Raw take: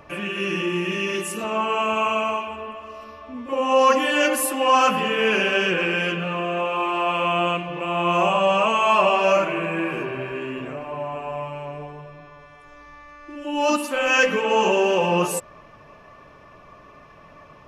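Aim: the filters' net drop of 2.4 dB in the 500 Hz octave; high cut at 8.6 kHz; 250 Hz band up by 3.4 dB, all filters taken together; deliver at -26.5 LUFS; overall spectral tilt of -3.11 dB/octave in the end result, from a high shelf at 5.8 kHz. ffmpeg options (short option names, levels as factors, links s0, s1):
-af "lowpass=8600,equalizer=f=250:t=o:g=6.5,equalizer=f=500:t=o:g=-4.5,highshelf=f=5800:g=-5,volume=0.596"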